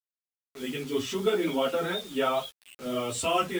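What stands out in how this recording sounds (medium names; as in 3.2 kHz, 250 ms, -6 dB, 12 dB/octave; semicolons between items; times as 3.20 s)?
random-step tremolo; a quantiser's noise floor 8-bit, dither none; a shimmering, thickened sound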